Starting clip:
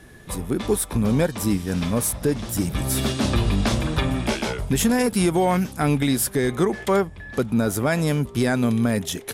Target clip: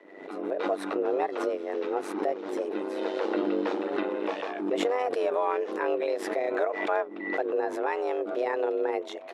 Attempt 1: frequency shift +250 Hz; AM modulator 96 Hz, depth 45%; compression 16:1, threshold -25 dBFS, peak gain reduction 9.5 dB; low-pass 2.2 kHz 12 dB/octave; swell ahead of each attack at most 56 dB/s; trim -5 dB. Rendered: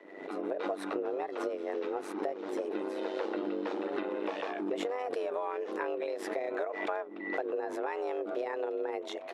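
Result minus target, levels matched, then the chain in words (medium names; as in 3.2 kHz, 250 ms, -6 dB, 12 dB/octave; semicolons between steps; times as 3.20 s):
compression: peak gain reduction +9.5 dB
frequency shift +250 Hz; AM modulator 96 Hz, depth 45%; low-pass 2.2 kHz 12 dB/octave; swell ahead of each attack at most 56 dB/s; trim -5 dB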